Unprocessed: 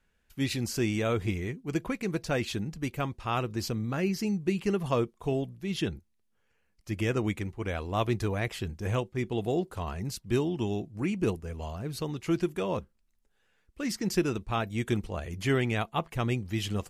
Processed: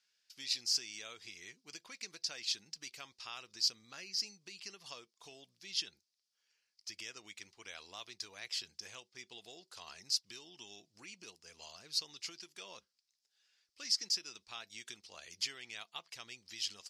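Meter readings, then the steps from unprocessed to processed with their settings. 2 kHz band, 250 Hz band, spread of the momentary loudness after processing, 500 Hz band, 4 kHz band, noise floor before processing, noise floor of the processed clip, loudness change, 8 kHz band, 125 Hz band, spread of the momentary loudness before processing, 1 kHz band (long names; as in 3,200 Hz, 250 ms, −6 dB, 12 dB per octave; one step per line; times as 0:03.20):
−12.0 dB, −32.0 dB, 18 LU, −27.5 dB, +3.0 dB, −72 dBFS, −85 dBFS, −8.5 dB, +1.0 dB, −37.0 dB, 7 LU, −20.0 dB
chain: tape wow and flutter 18 cents
downward compressor, threshold −33 dBFS, peak gain reduction 12 dB
resonant band-pass 5,000 Hz, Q 4.2
level +13.5 dB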